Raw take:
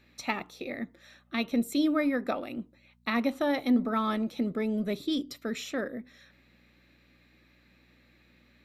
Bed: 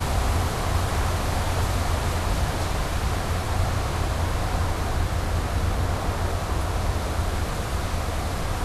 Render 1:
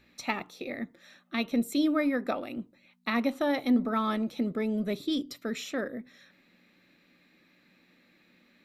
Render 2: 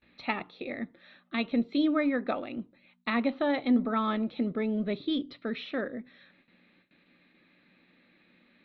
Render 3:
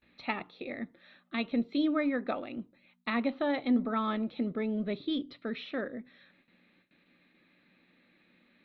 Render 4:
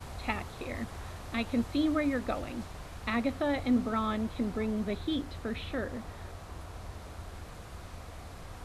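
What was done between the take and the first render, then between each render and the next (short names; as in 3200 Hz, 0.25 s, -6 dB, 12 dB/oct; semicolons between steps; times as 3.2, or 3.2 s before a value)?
de-hum 60 Hz, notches 2
steep low-pass 4100 Hz 48 dB/oct; gate with hold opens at -54 dBFS
gain -2.5 dB
add bed -18.5 dB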